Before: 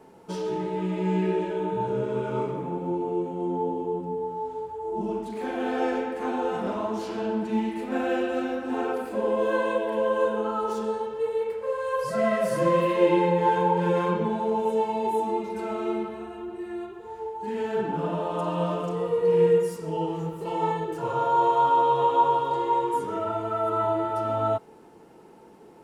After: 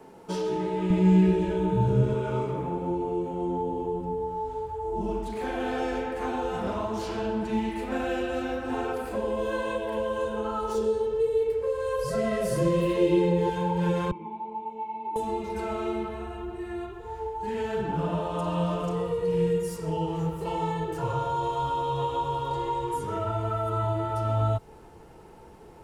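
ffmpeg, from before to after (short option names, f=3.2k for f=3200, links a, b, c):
-filter_complex "[0:a]asettb=1/sr,asplit=3[a][b][c];[a]atrim=end=0.904[d];[b]atrim=start=0.9:end=2.14,asetpts=PTS-STARTPTS,afade=t=in:d=0.004:c=qsin,afade=t=out:st=1.236:d=0.004:c=qsin,bass=f=250:g=11,treble=f=4k:g=2[e];[c]atrim=start=2.136[f];[d][e]acrossfade=d=0.004:c1=hsin:c2=qsin[g];[g][f]acrossfade=d=0.004:c1=qsin:c2=hsin,asettb=1/sr,asplit=3[h][i][j];[h]atrim=end=10.744[k];[i]atrim=start=10.74:end=13.5,asetpts=PTS-STARTPTS,afade=t=in:d=0.004:c=qsin,afade=t=out:st=2.756:d=0.004:c=qsin,equalizer=f=410:t=o:w=0.54:g=13[l];[j]atrim=start=13.496[m];[k][l]acrossfade=d=0.004:c1=hsin:c2=qsin[n];[n][m]acrossfade=d=0.004:c1=qsin:c2=hsin,asettb=1/sr,asplit=3[o][p][q];[o]atrim=end=14.114[r];[p]atrim=start=14.11:end=15.16,asetpts=PTS-STARTPTS,afade=t=in:d=0.004:c=qsin,afade=t=out:st=1.046:d=0.004:c=qsin,asplit=3[s][t][u];[s]bandpass=f=300:t=q:w=8,volume=0dB[v];[t]bandpass=f=870:t=q:w=8,volume=-6dB[w];[u]bandpass=f=2.24k:t=q:w=8,volume=-9dB[x];[v][w][x]amix=inputs=3:normalize=0[y];[q]atrim=start=15.156[z];[r][y]acrossfade=d=0.004:c1=hsin:c2=qsin[aa];[aa][z]acrossfade=d=0.004:c1=qsin:c2=hsin,acrossover=split=320|3000[ab][ac][ad];[ac]acompressor=threshold=-30dB:ratio=6[ae];[ab][ae][ad]amix=inputs=3:normalize=0,asubboost=boost=9.5:cutoff=75,volume=2.5dB"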